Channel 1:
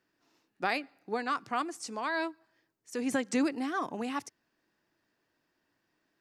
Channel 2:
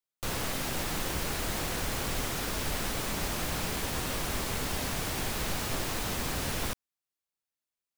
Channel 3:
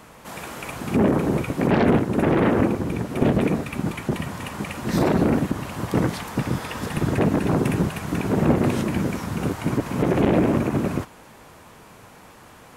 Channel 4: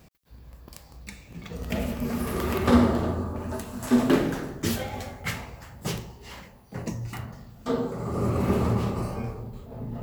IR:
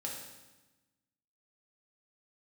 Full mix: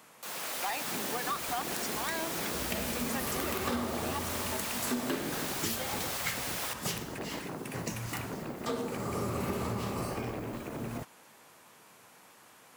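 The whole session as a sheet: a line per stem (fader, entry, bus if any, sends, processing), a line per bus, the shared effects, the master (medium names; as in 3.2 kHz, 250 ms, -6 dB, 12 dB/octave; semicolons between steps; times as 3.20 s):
-13.0 dB, 0.00 s, no send, peaking EQ 810 Hz +9 dB 1.9 oct; waveshaping leveller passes 2; phaser 0.41 Hz, delay 1.8 ms, feedback 50%
-7.5 dB, 0.00 s, no send, high-pass 580 Hz; tilt shelf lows +4.5 dB; level rider gain up to 6.5 dB
-10.5 dB, 0.00 s, no send, compression 6:1, threshold -22 dBFS, peak gain reduction 9.5 dB; high-pass 120 Hz
-0.5 dB, 1.00 s, no send, none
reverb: none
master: tilt EQ +2 dB/octave; compression 6:1, threshold -30 dBFS, peak gain reduction 12.5 dB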